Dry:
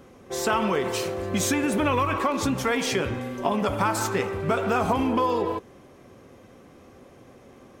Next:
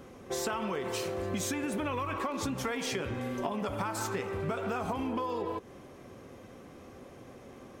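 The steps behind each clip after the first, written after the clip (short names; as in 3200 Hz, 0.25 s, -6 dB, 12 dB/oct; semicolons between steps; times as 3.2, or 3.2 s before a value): compressor, threshold -31 dBFS, peak gain reduction 11.5 dB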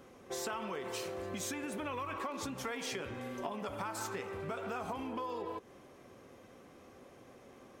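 low shelf 250 Hz -6.5 dB; gain -4.5 dB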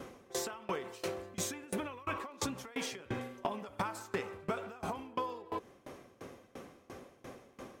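compressor 2.5:1, threshold -43 dBFS, peak gain reduction 7 dB; dB-ramp tremolo decaying 2.9 Hz, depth 24 dB; gain +12 dB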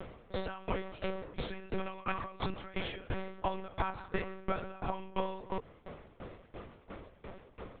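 monotone LPC vocoder at 8 kHz 190 Hz; gain +2.5 dB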